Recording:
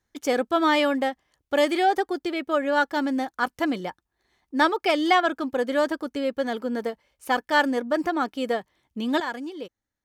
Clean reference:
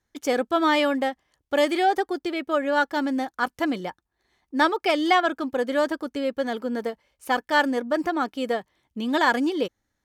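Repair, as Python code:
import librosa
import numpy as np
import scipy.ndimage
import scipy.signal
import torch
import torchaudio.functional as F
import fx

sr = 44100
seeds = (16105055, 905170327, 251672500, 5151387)

y = fx.gain(x, sr, db=fx.steps((0.0, 0.0), (9.2, 10.5)))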